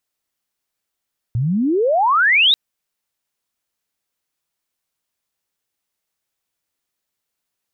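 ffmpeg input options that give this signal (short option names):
-f lavfi -i "aevalsrc='pow(10,(-16+6.5*t/1.19)/20)*sin(2*PI*110*1.19/log(3900/110)*(exp(log(3900/110)*t/1.19)-1))':d=1.19:s=44100"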